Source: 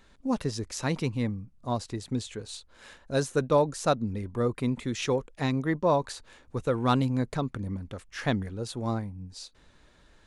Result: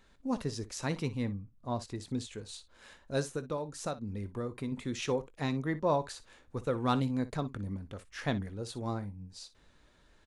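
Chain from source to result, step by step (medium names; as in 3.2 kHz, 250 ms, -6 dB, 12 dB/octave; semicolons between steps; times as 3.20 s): 1.25–1.82 s: treble shelf 5.6 kHz -10 dB; 3.21–4.72 s: compression 5:1, threshold -28 dBFS, peak gain reduction 10 dB; early reflections 20 ms -15.5 dB, 59 ms -16.5 dB; trim -5 dB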